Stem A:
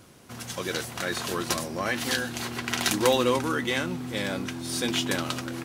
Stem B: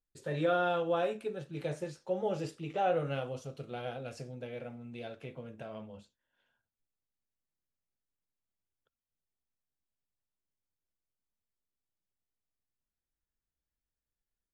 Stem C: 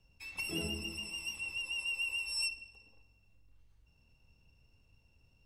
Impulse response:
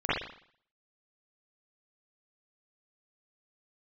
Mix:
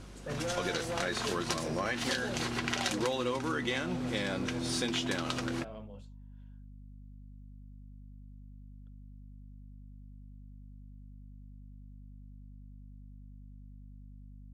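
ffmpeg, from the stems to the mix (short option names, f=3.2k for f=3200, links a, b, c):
-filter_complex "[0:a]lowpass=7.6k,volume=0.5dB[a];[1:a]asoftclip=type=tanh:threshold=-31dB,aeval=exprs='val(0)+0.00447*(sin(2*PI*50*n/s)+sin(2*PI*2*50*n/s)/2+sin(2*PI*3*50*n/s)/3+sin(2*PI*4*50*n/s)/4+sin(2*PI*5*50*n/s)/5)':c=same,volume=-1.5dB[b];[2:a]lowpass=f=1k:t=q:w=8.3,adelay=1100,volume=-11dB[c];[a][b][c]amix=inputs=3:normalize=0,acompressor=threshold=-29dB:ratio=6"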